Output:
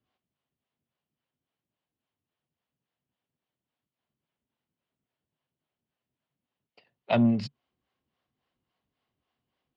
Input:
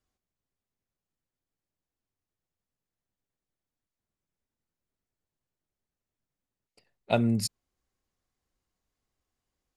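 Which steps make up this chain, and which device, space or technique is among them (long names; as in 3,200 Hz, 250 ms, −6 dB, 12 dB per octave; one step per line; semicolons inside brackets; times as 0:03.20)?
guitar amplifier with harmonic tremolo (two-band tremolo in antiphase 3.6 Hz, depth 70%, crossover 410 Hz; soft clipping −25 dBFS, distortion −11 dB; loudspeaker in its box 99–4,000 Hz, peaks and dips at 140 Hz +5 dB, 240 Hz +4 dB, 670 Hz +3 dB, 990 Hz +3 dB, 3,000 Hz +6 dB)
level +6 dB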